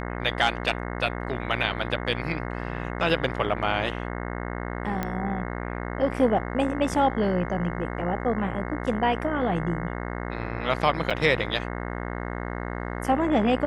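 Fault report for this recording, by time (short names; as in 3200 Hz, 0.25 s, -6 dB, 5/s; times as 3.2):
buzz 60 Hz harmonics 36 -32 dBFS
5.03 pop -14 dBFS
11.1–11.11 gap 6.1 ms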